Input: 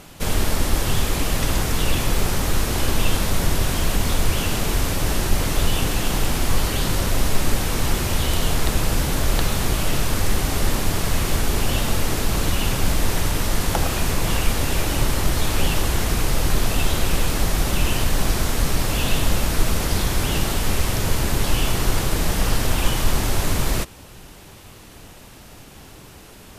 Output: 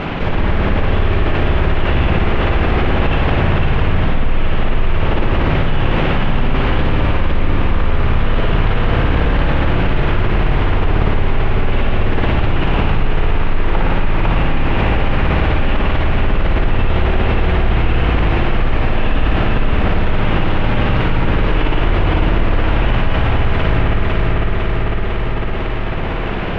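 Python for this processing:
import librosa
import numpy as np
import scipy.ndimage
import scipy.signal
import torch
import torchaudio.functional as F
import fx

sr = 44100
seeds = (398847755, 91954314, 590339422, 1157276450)

y = scipy.signal.sosfilt(scipy.signal.butter(4, 2800.0, 'lowpass', fs=sr, output='sos'), x)
y = fx.echo_feedback(y, sr, ms=502, feedback_pct=52, wet_db=-3.0)
y = fx.rev_spring(y, sr, rt60_s=1.9, pass_ms=(56,), chirp_ms=55, drr_db=-2.5)
y = fx.env_flatten(y, sr, amount_pct=70)
y = y * librosa.db_to_amplitude(-6.0)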